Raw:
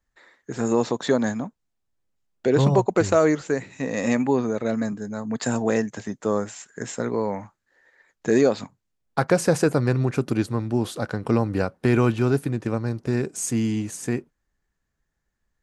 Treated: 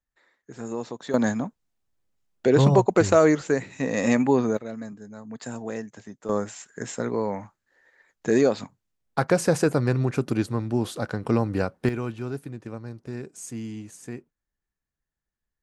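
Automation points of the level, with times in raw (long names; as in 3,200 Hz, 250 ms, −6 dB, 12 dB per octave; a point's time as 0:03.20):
−10.5 dB
from 0:01.14 +1 dB
from 0:04.57 −10.5 dB
from 0:06.29 −1.5 dB
from 0:11.89 −11 dB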